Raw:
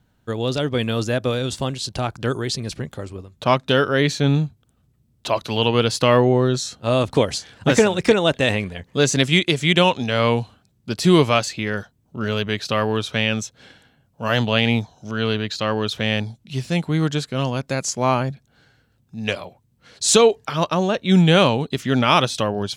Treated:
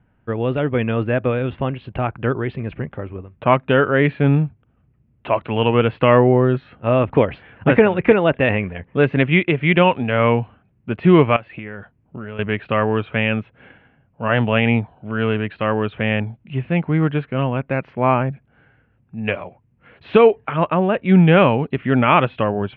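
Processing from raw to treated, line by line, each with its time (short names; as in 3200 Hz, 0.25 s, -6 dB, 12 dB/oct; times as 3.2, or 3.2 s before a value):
11.36–12.39 compressor 8:1, threshold -29 dBFS
whole clip: steep low-pass 2700 Hz 48 dB/oct; gain +2.5 dB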